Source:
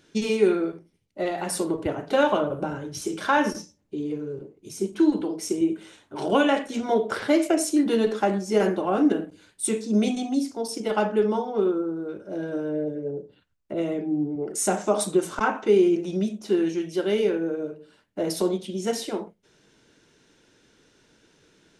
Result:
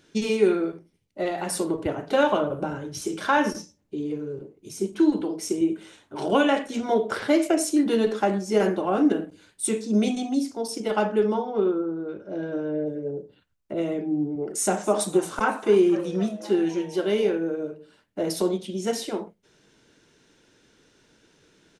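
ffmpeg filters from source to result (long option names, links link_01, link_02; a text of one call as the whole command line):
ffmpeg -i in.wav -filter_complex "[0:a]asettb=1/sr,asplit=3[link_01][link_02][link_03];[link_01]atrim=end=11.344[link_04];[link_02]atrim=start=11.34:end=12.86,asetpts=PTS-STARTPTS,afade=type=in:duration=0.004:curve=qsin,afade=type=out:start_time=1.516:duration=0.004:curve=qsin,lowpass=4600[link_05];[link_03]atrim=start=12.856[link_06];[link_04][link_05]acrossfade=duration=0.004:curve1=hsin:curve2=qsin[link_07];[link_07][link_06]acrossfade=duration=0.004:curve1=qsin:curve2=hsin,asplit=3[link_08][link_09][link_10];[link_08]afade=type=out:start_time=14.82:duration=0.02[link_11];[link_09]asplit=6[link_12][link_13][link_14][link_15][link_16][link_17];[link_13]adelay=256,afreqshift=140,volume=-19dB[link_18];[link_14]adelay=512,afreqshift=280,volume=-23.6dB[link_19];[link_15]adelay=768,afreqshift=420,volume=-28.2dB[link_20];[link_16]adelay=1024,afreqshift=560,volume=-32.7dB[link_21];[link_17]adelay=1280,afreqshift=700,volume=-37.3dB[link_22];[link_12][link_18][link_19][link_20][link_21][link_22]amix=inputs=6:normalize=0,afade=type=in:start_time=14.82:duration=0.02,afade=type=out:start_time=17.31:duration=0.02[link_23];[link_10]afade=type=in:start_time=17.31:duration=0.02[link_24];[link_11][link_23][link_24]amix=inputs=3:normalize=0" out.wav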